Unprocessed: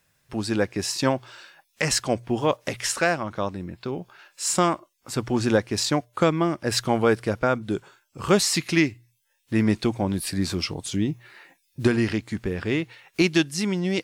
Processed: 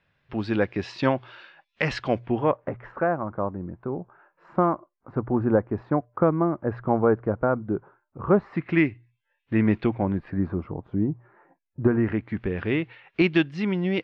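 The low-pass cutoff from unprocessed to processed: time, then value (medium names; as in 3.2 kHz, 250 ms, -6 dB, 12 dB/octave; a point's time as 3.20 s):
low-pass 24 dB/octave
2.19 s 3.4 kHz
2.73 s 1.3 kHz
8.44 s 1.3 kHz
8.85 s 2.6 kHz
9.87 s 2.6 kHz
10.58 s 1.2 kHz
11.80 s 1.2 kHz
12.44 s 3 kHz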